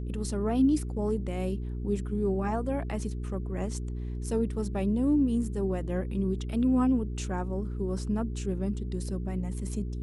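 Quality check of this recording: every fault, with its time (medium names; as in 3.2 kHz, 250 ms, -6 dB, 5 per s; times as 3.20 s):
hum 60 Hz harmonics 7 -34 dBFS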